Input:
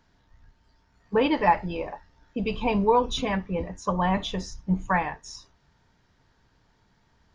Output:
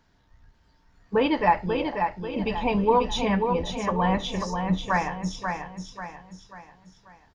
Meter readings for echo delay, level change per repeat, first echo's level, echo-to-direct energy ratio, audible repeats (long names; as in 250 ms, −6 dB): 539 ms, −7.5 dB, −5.5 dB, −4.5 dB, 4